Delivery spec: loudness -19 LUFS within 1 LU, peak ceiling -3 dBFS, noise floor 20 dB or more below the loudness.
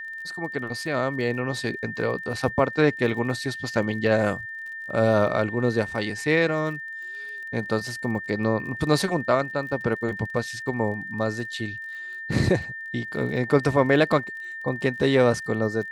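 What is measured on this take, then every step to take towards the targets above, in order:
ticks 33/s; steady tone 1800 Hz; tone level -33 dBFS; loudness -25.0 LUFS; peak -5.5 dBFS; loudness target -19.0 LUFS
-> de-click; notch 1800 Hz, Q 30; gain +6 dB; limiter -3 dBFS

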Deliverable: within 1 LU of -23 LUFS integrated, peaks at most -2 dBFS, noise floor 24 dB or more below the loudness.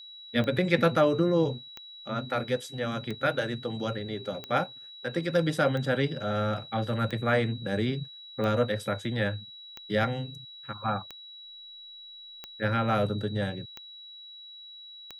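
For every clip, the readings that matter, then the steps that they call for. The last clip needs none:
clicks 12; steady tone 3900 Hz; tone level -44 dBFS; loudness -29.0 LUFS; peak -9.0 dBFS; loudness target -23.0 LUFS
-> de-click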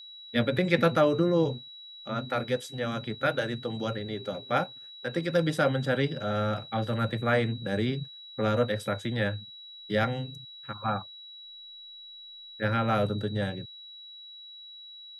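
clicks 0; steady tone 3900 Hz; tone level -44 dBFS
-> notch 3900 Hz, Q 30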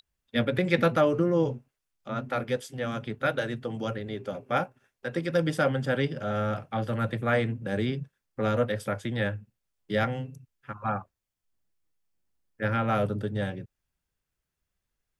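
steady tone none; loudness -29.0 LUFS; peak -9.0 dBFS; loudness target -23.0 LUFS
-> gain +6 dB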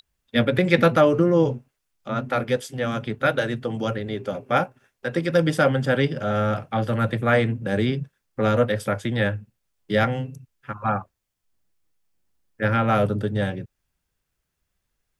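loudness -23.0 LUFS; peak -3.0 dBFS; noise floor -79 dBFS

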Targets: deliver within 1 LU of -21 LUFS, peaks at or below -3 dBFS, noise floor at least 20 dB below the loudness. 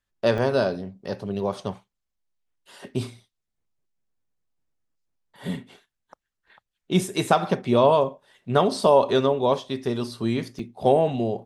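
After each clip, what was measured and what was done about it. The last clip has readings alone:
dropouts 2; longest dropout 2.8 ms; loudness -23.5 LUFS; peak -4.5 dBFS; loudness target -21.0 LUFS
-> interpolate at 0.38/10.59, 2.8 ms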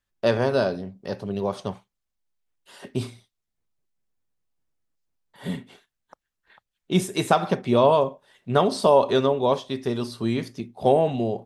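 dropouts 0; loudness -23.5 LUFS; peak -4.5 dBFS; loudness target -21.0 LUFS
-> gain +2.5 dB; limiter -3 dBFS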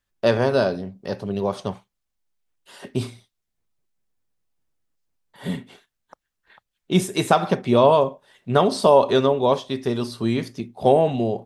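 loudness -21.0 LUFS; peak -3.0 dBFS; noise floor -80 dBFS

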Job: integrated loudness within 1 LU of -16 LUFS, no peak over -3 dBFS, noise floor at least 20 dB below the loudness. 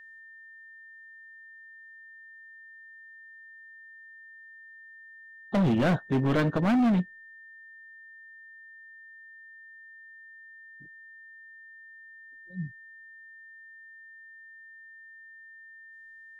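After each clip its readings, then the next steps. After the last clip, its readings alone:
clipped 1.4%; flat tops at -20.5 dBFS; steady tone 1800 Hz; tone level -47 dBFS; loudness -26.5 LUFS; peak -20.5 dBFS; loudness target -16.0 LUFS
-> clip repair -20.5 dBFS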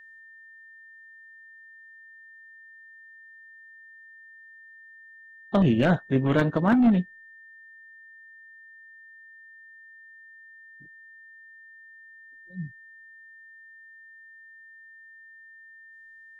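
clipped 0.0%; steady tone 1800 Hz; tone level -47 dBFS
-> notch 1800 Hz, Q 30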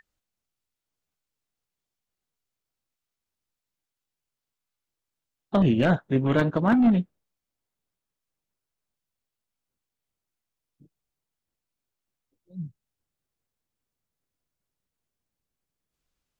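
steady tone none; loudness -22.5 LUFS; peak -11.5 dBFS; loudness target -16.0 LUFS
-> gain +6.5 dB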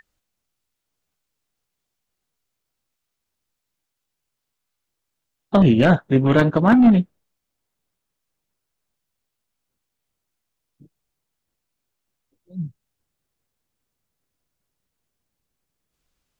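loudness -16.0 LUFS; peak -5.0 dBFS; noise floor -81 dBFS

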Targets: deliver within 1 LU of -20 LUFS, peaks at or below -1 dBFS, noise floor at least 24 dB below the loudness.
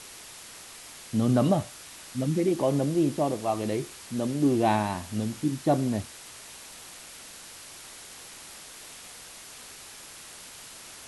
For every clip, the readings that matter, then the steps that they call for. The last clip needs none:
noise floor -46 dBFS; noise floor target -51 dBFS; loudness -27.0 LUFS; peak -11.0 dBFS; loudness target -20.0 LUFS
-> denoiser 6 dB, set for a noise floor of -46 dBFS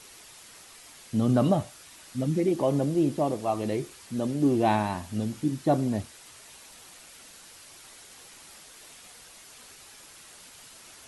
noise floor -50 dBFS; noise floor target -51 dBFS
-> denoiser 6 dB, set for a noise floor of -50 dBFS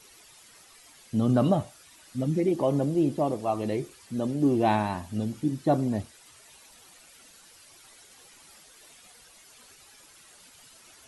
noise floor -54 dBFS; loudness -27.0 LUFS; peak -11.0 dBFS; loudness target -20.0 LUFS
-> gain +7 dB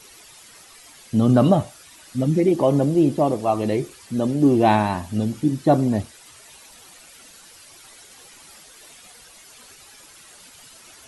loudness -20.0 LUFS; peak -4.0 dBFS; noise floor -47 dBFS

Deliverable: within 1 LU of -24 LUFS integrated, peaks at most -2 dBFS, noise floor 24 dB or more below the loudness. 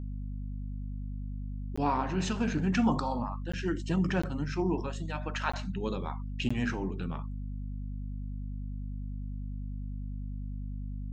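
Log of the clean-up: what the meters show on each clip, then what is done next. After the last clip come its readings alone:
dropouts 5; longest dropout 15 ms; hum 50 Hz; harmonics up to 250 Hz; hum level -34 dBFS; loudness -34.0 LUFS; peak -14.5 dBFS; loudness target -24.0 LUFS
-> interpolate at 1.76/3.52/4.22/5.52/6.49, 15 ms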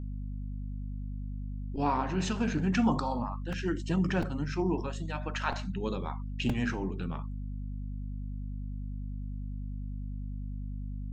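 dropouts 0; hum 50 Hz; harmonics up to 250 Hz; hum level -34 dBFS
-> notches 50/100/150/200/250 Hz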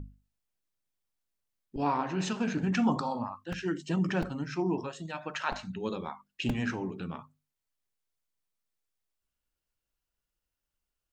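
hum none; loudness -32.5 LUFS; peak -15.0 dBFS; loudness target -24.0 LUFS
-> gain +8.5 dB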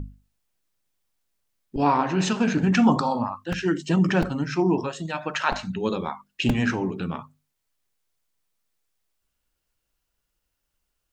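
loudness -24.0 LUFS; peak -6.5 dBFS; noise floor -79 dBFS

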